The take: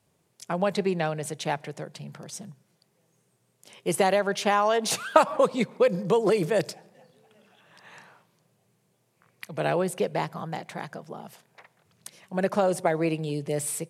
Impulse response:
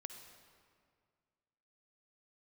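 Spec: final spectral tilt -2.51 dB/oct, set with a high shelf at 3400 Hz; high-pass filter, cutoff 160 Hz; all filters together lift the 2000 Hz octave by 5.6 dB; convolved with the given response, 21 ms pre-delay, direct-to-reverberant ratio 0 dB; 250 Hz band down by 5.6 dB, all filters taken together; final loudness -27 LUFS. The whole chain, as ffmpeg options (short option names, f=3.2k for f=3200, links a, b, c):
-filter_complex "[0:a]highpass=160,equalizer=f=250:t=o:g=-7.5,equalizer=f=2k:t=o:g=5.5,highshelf=f=3.4k:g=5.5,asplit=2[a][b];[1:a]atrim=start_sample=2205,adelay=21[c];[b][c]afir=irnorm=-1:irlink=0,volume=4dB[d];[a][d]amix=inputs=2:normalize=0,volume=-4dB"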